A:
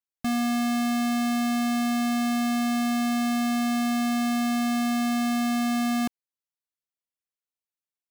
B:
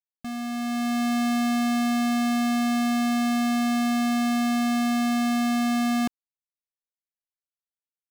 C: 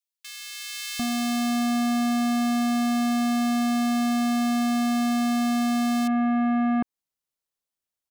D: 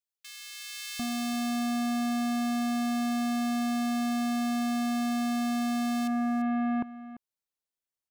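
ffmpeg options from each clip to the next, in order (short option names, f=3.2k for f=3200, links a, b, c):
-af "anlmdn=1.58,dynaudnorm=f=170:g=9:m=9dB,volume=-7.5dB"
-filter_complex "[0:a]acrossover=split=2100[a][b];[a]adelay=750[c];[c][b]amix=inputs=2:normalize=0,acompressor=threshold=-30dB:ratio=5,volume=7dB"
-af "aecho=1:1:342:0.178,volume=-5.5dB"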